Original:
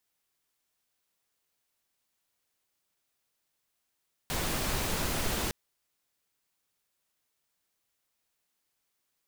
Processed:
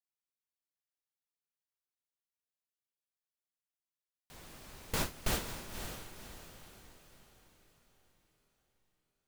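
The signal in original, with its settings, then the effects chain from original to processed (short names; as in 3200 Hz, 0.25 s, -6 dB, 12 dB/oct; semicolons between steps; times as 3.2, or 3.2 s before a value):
noise pink, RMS -31 dBFS 1.21 s
gate with hold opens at -19 dBFS; on a send: diffused feedback echo 0.533 s, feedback 44%, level -8 dB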